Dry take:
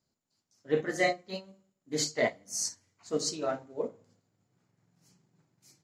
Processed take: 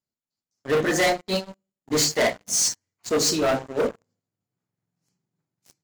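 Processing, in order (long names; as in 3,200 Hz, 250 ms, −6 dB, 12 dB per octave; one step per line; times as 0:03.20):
leveller curve on the samples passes 5
level −2 dB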